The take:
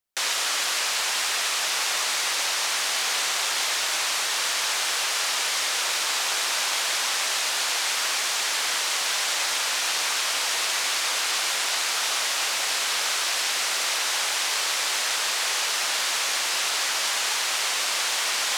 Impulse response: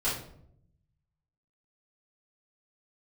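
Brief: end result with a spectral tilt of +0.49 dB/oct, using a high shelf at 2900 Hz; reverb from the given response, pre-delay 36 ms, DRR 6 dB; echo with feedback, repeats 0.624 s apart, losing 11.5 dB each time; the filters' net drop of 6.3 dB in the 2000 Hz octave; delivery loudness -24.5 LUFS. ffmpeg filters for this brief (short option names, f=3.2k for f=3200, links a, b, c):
-filter_complex "[0:a]equalizer=f=2k:t=o:g=-6,highshelf=f=2.9k:g=-5,aecho=1:1:624|1248|1872:0.266|0.0718|0.0194,asplit=2[a][b];[1:a]atrim=start_sample=2205,adelay=36[c];[b][c]afir=irnorm=-1:irlink=0,volume=-14.5dB[d];[a][d]amix=inputs=2:normalize=0,volume=2dB"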